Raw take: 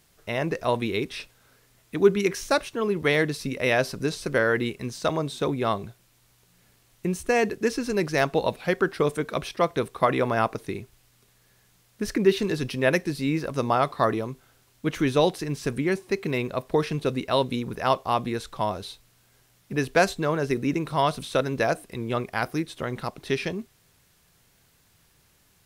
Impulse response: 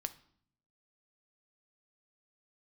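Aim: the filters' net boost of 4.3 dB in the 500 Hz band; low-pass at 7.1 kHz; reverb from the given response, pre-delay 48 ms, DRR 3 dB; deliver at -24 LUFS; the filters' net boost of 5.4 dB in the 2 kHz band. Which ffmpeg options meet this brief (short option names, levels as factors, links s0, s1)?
-filter_complex "[0:a]lowpass=7100,equalizer=f=500:t=o:g=5,equalizer=f=2000:t=o:g=6.5,asplit=2[s0][s1];[1:a]atrim=start_sample=2205,adelay=48[s2];[s1][s2]afir=irnorm=-1:irlink=0,volume=0.794[s3];[s0][s3]amix=inputs=2:normalize=0,volume=0.668"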